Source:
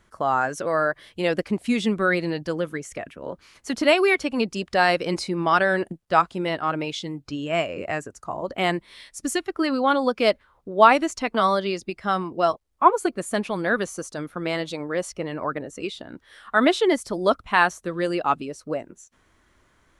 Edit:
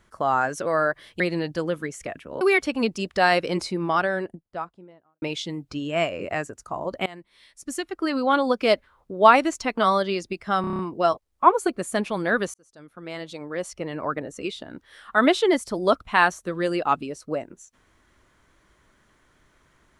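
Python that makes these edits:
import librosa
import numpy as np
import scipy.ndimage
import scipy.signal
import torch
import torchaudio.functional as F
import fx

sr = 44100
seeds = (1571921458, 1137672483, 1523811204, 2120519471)

y = fx.studio_fade_out(x, sr, start_s=4.98, length_s=1.81)
y = fx.edit(y, sr, fx.cut(start_s=1.2, length_s=0.91),
    fx.cut(start_s=3.32, length_s=0.66),
    fx.fade_in_from(start_s=8.63, length_s=1.3, floor_db=-23.0),
    fx.stutter(start_s=12.18, slice_s=0.03, count=7),
    fx.fade_in_span(start_s=13.93, length_s=1.58), tone=tone)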